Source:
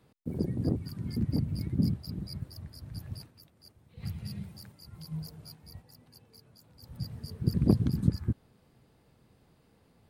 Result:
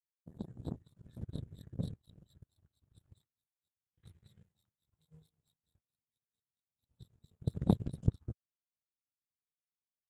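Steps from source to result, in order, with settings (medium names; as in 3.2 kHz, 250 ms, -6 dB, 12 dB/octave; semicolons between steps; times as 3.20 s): power-law waveshaper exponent 2; formant shift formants -4 st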